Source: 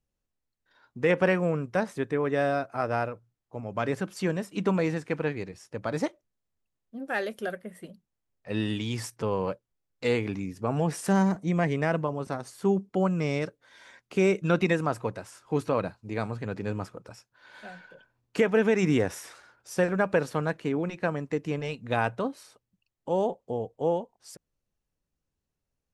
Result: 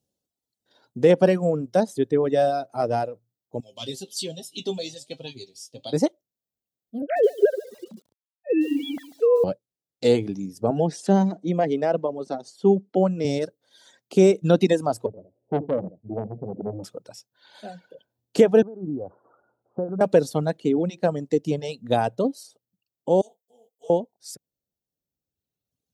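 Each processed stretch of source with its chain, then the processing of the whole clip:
3.60–5.93 s: resonant high shelf 2.3 kHz +13 dB, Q 3 + feedback comb 130 Hz, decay 0.16 s, mix 90% + flange 1.3 Hz, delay 5.6 ms, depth 5.1 ms, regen +85%
7.02–9.44 s: formants replaced by sine waves + dynamic bell 440 Hz, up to +6 dB, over -43 dBFS, Q 4.5 + bit-crushed delay 143 ms, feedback 35%, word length 8-bit, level -9 dB
10.70–13.25 s: high-pass 180 Hz + distance through air 100 m
15.06–16.84 s: steep low-pass 610 Hz + delay 74 ms -11 dB + transformer saturation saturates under 920 Hz
18.62–20.01 s: steep low-pass 1.4 kHz 72 dB/octave + compression 3:1, threshold -34 dBFS
23.21–23.90 s: pre-emphasis filter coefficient 0.97 + comb 4.4 ms, depth 80% + detune thickener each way 58 cents
whole clip: reverb removal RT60 1.8 s; high-pass 130 Hz; high-order bell 1.6 kHz -13 dB; trim +8.5 dB

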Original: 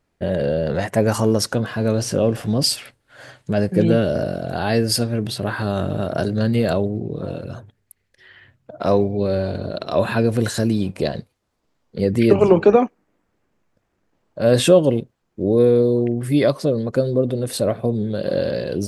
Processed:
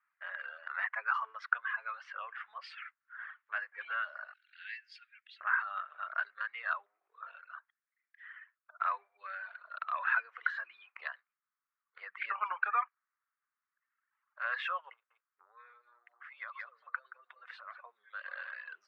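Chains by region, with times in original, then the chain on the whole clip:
4.33–5.41 s: inverse Chebyshev band-stop 110–470 Hz, stop band 80 dB + resonant low shelf 710 Hz +11.5 dB, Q 3
14.93–17.81 s: delay 174 ms -8 dB + compression 16:1, threshold -22 dBFS
whole clip: elliptic high-pass 1.2 kHz, stop band 80 dB; reverb removal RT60 1.4 s; low-pass 1.8 kHz 24 dB/octave; trim +2.5 dB

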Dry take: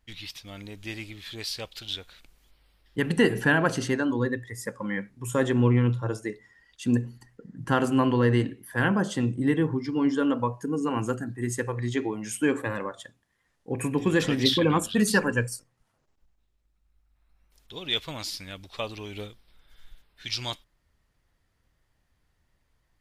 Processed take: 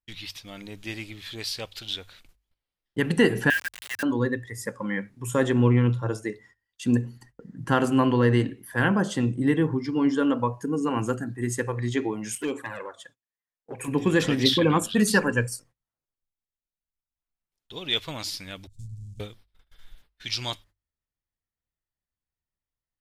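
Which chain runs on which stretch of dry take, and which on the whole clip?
3.50–4.03 s: Chebyshev band-pass 1.6–4 kHz, order 5 + word length cut 6-bit, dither none
12.35–13.88 s: touch-sensitive flanger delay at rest 11.6 ms, full sweep at -20.5 dBFS + bass shelf 320 Hz -11.5 dB + overload inside the chain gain 23.5 dB
18.67–19.20 s: square wave that keeps the level + elliptic band-stop 120–7600 Hz, stop band 70 dB + tape spacing loss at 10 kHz 25 dB
whole clip: gate -53 dBFS, range -24 dB; hum notches 50/100 Hz; trim +1.5 dB

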